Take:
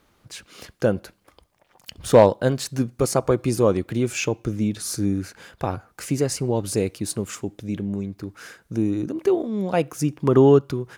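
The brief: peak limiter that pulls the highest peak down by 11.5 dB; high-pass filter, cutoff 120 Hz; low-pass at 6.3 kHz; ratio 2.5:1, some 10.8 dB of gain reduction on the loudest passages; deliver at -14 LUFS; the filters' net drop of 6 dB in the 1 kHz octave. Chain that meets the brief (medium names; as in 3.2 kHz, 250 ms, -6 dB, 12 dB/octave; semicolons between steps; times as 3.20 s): high-pass 120 Hz; low-pass 6.3 kHz; peaking EQ 1 kHz -8 dB; compression 2.5:1, threshold -27 dBFS; trim +20 dB; peak limiter -3 dBFS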